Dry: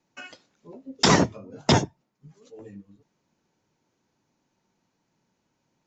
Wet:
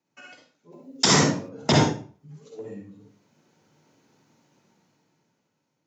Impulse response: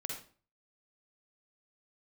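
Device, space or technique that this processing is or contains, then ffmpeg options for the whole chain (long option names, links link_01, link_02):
far laptop microphone: -filter_complex "[1:a]atrim=start_sample=2205[link_01];[0:a][link_01]afir=irnorm=-1:irlink=0,highpass=100,dynaudnorm=framelen=230:gausssize=11:maxgain=15dB,asettb=1/sr,asplit=3[link_02][link_03][link_04];[link_02]atrim=end=0.724[link_05];[link_03]atrim=start=0.72:end=1.49,asetpts=PTS-STARTPTS,afade=type=in:duration=0.004:curve=qsin,afade=type=out:start_time=0.766:duration=0.004:curve=qsin,aemphasis=mode=production:type=50kf[link_06];[link_04]atrim=start=1.486[link_07];[link_05][link_06]acrossfade=duration=0.004:curve1=hsin:curve2=qsin[link_08];[link_08][link_07]acrossfade=duration=0.004:curve1=qsin:curve2=hsin,volume=-3.5dB"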